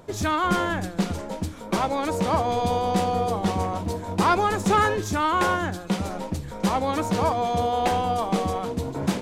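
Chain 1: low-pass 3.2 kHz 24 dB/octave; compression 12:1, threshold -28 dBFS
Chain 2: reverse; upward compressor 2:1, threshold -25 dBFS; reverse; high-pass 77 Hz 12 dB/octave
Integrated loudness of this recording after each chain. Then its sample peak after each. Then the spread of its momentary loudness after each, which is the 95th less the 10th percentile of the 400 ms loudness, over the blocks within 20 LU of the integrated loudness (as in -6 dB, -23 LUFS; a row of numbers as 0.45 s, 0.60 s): -33.0 LUFS, -24.5 LUFS; -18.0 dBFS, -8.5 dBFS; 3 LU, 8 LU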